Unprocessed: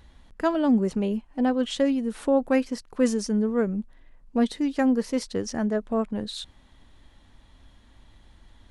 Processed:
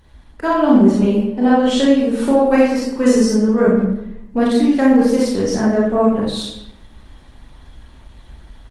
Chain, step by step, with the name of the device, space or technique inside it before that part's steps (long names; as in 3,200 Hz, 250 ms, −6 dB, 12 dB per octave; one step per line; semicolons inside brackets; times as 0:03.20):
speakerphone in a meeting room (convolution reverb RT60 0.75 s, pre-delay 26 ms, DRR −6 dB; far-end echo of a speakerphone 170 ms, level −16 dB; automatic gain control gain up to 5 dB; level +1 dB; Opus 24 kbit/s 48,000 Hz)